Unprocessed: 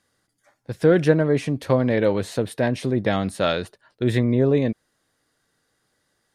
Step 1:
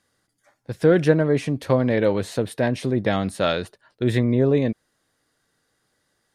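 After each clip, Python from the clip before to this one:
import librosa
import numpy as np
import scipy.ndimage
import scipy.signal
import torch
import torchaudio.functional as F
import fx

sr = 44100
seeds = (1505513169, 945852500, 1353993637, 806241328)

y = x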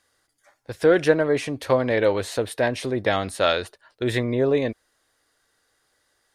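y = fx.peak_eq(x, sr, hz=170.0, db=-13.5, octaves=1.5)
y = y * librosa.db_to_amplitude(3.0)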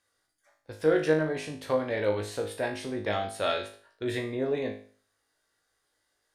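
y = fx.comb_fb(x, sr, f0_hz=52.0, decay_s=0.44, harmonics='all', damping=0.0, mix_pct=90)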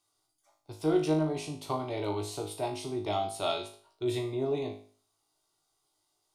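y = fx.fixed_phaser(x, sr, hz=340.0, stages=8)
y = y * librosa.db_to_amplitude(2.0)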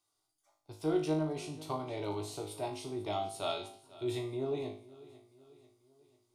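y = fx.echo_feedback(x, sr, ms=493, feedback_pct=50, wet_db=-19.5)
y = y * librosa.db_to_amplitude(-4.5)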